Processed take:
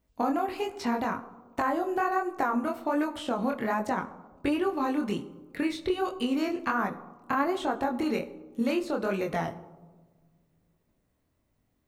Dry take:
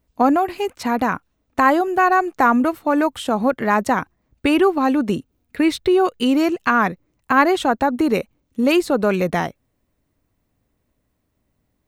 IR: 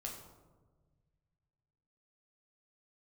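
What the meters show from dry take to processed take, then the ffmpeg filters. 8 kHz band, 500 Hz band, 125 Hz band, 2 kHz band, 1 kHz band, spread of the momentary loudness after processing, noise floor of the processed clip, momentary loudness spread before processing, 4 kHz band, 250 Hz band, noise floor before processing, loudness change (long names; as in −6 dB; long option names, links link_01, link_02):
−12.0 dB, −11.0 dB, −10.0 dB, −12.5 dB, −11.5 dB, 6 LU, −74 dBFS, 8 LU, −10.5 dB, −10.5 dB, −71 dBFS, −11.0 dB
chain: -filter_complex "[0:a]acrossover=split=1300|7000[link_01][link_02][link_03];[link_01]acompressor=threshold=-23dB:ratio=4[link_04];[link_02]acompressor=threshold=-35dB:ratio=4[link_05];[link_03]acompressor=threshold=-54dB:ratio=4[link_06];[link_04][link_05][link_06]amix=inputs=3:normalize=0,flanger=delay=19.5:depth=6.9:speed=1.3,asplit=2[link_07][link_08];[1:a]atrim=start_sample=2205,lowshelf=frequency=130:gain=-8.5[link_09];[link_08][link_09]afir=irnorm=-1:irlink=0,volume=-4dB[link_10];[link_07][link_10]amix=inputs=2:normalize=0,volume=-3.5dB"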